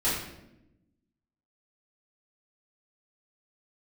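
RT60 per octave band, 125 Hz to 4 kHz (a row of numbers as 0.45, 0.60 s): 1.5, 1.4, 1.0, 0.75, 0.70, 0.60 s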